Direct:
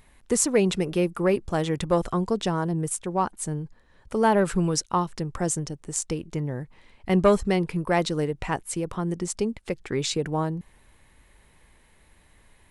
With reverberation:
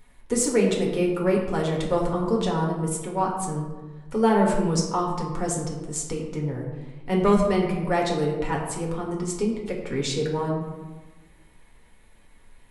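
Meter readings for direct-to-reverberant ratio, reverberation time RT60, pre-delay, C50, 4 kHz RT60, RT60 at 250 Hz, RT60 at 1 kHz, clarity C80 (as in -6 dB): -2.0 dB, 1.2 s, 4 ms, 4.0 dB, 0.65 s, 1.6 s, 1.2 s, 6.0 dB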